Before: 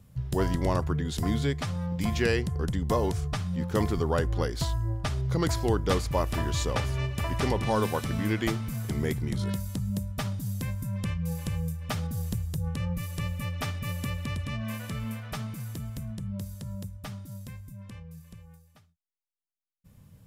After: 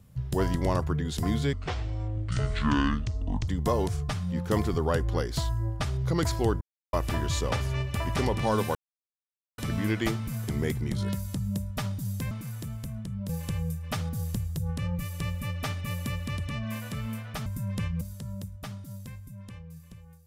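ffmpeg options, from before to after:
-filter_complex "[0:a]asplit=10[s0][s1][s2][s3][s4][s5][s6][s7][s8][s9];[s0]atrim=end=1.534[s10];[s1]atrim=start=1.53:end=2.72,asetpts=PTS-STARTPTS,asetrate=26901,aresample=44100,atrim=end_sample=86031,asetpts=PTS-STARTPTS[s11];[s2]atrim=start=2.716:end=5.85,asetpts=PTS-STARTPTS,afade=t=out:st=3.13:d=0.004:c=hsin[s12];[s3]atrim=start=5.85:end=6.17,asetpts=PTS-STARTPTS,volume=0[s13];[s4]atrim=start=6.17:end=7.99,asetpts=PTS-STARTPTS,afade=t=in:d=0.004:c=hsin,afade=t=out:st=1.816:d=0.004:c=hsin,apad=pad_dur=0.83[s14];[s5]atrim=start=7.99:end=10.722,asetpts=PTS-STARTPTS,afade=t=in:d=0.004:c=hsin[s15];[s6]atrim=start=15.438:end=16.422[s16];[s7]atrim=start=11.268:end=15.442[s17];[s8]atrim=start=10.718:end=11.272[s18];[s9]atrim=start=16.418[s19];[s10][s11]acrossfade=d=0.004:c1=hsin:c2=hsin[s20];[s12][s13][s14][s15]concat=n=4:v=0:a=1[s21];[s20][s21]acrossfade=d=0.004:c1=hsin:c2=hsin[s22];[s22][s16]acrossfade=d=0.004:c1=hsin:c2=hsin[s23];[s23][s17]acrossfade=d=0.004:c1=hsin:c2=hsin[s24];[s24][s18]acrossfade=d=0.004:c1=hsin:c2=hsin[s25];[s25][s19]acrossfade=d=0.004:c1=hsin:c2=hsin"

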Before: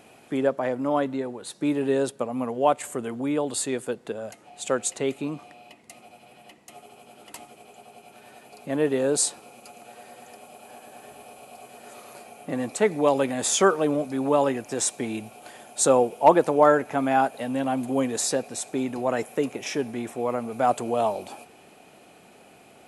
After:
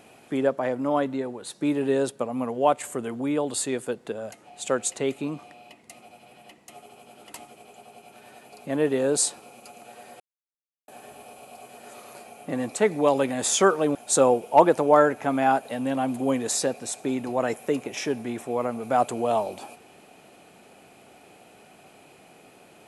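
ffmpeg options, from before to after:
-filter_complex "[0:a]asplit=4[s0][s1][s2][s3];[s0]atrim=end=10.2,asetpts=PTS-STARTPTS,afade=t=out:st=10.196:d=0.004:c=hsin[s4];[s1]atrim=start=10.2:end=10.88,asetpts=PTS-STARTPTS,volume=0[s5];[s2]atrim=start=10.88:end=13.952,asetpts=PTS-STARTPTS,afade=t=in:d=0.004:c=hsin[s6];[s3]atrim=start=15.638[s7];[s4][s5][s6]concat=n=3:v=0:a=1[s8];[s8][s7]acrossfade=d=0.004:c1=hsin:c2=hsin"

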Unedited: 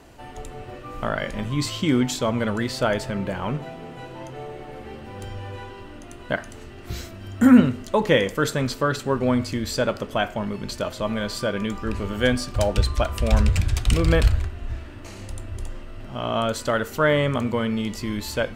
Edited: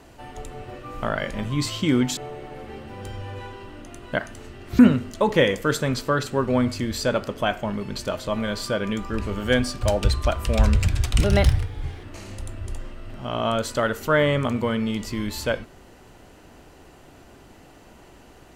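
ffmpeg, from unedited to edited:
-filter_complex "[0:a]asplit=5[s0][s1][s2][s3][s4];[s0]atrim=end=2.172[s5];[s1]atrim=start=4.338:end=6.962[s6];[s2]atrim=start=7.518:end=13.974[s7];[s3]atrim=start=13.97:end=14.94,asetpts=PTS-STARTPTS,asetrate=53802,aresample=44100,atrim=end_sample=35063,asetpts=PTS-STARTPTS[s8];[s4]atrim=start=14.936[s9];[s5][s6]acrossfade=d=0.004:c1=hsin:c2=hsin[s10];[s10][s7]acrossfade=d=0.004:c1=hsin:c2=hsin[s11];[s11][s8]acrossfade=d=0.004:c1=hsin:c2=hsin[s12];[s12][s9]acrossfade=d=0.004:c1=hsin:c2=hsin"

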